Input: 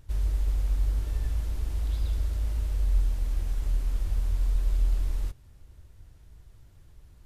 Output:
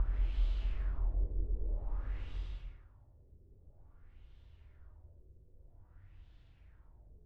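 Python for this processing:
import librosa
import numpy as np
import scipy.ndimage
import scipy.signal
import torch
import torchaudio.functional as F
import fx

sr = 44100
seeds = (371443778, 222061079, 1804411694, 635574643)

y = fx.paulstretch(x, sr, seeds[0], factor=4.9, window_s=0.25, from_s=4.81)
y = fx.filter_lfo_lowpass(y, sr, shape='sine', hz=0.51, low_hz=390.0, high_hz=3400.0, q=2.7)
y = y * 10.0 ** (-7.5 / 20.0)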